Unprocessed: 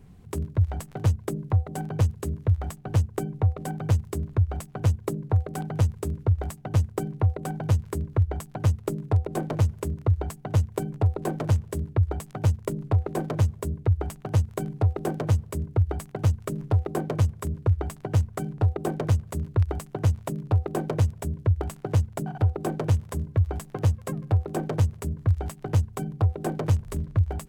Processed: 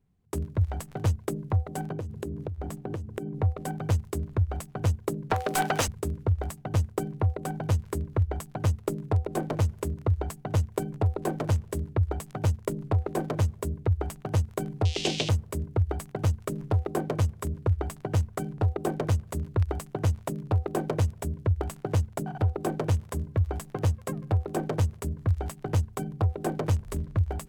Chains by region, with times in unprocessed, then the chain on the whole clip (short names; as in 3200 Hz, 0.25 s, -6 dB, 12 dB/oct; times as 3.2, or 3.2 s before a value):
1.92–3.42 bell 320 Hz +12.5 dB 1.9 oct + compressor 20:1, threshold -29 dBFS
5.3–5.88 tilt +3 dB/oct + overdrive pedal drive 27 dB, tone 3000 Hz, clips at -12.5 dBFS
14.85–15.29 switching spikes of -26 dBFS + LPF 6000 Hz 24 dB/oct + resonant high shelf 2000 Hz +13 dB, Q 3
whole clip: gate with hold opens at -33 dBFS; dynamic EQ 130 Hz, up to -5 dB, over -34 dBFS, Q 1.2